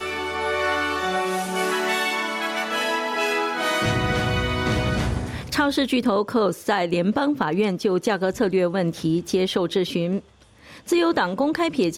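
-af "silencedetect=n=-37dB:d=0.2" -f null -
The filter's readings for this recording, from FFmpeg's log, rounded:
silence_start: 10.20
silence_end: 10.67 | silence_duration: 0.47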